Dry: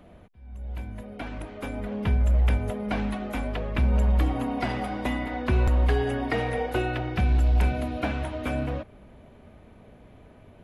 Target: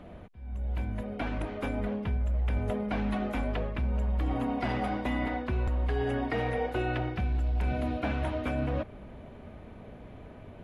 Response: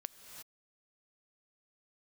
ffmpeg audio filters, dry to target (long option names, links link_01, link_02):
-af "lowpass=frequency=4000:poles=1,areverse,acompressor=threshold=-31dB:ratio=6,areverse,volume=4dB"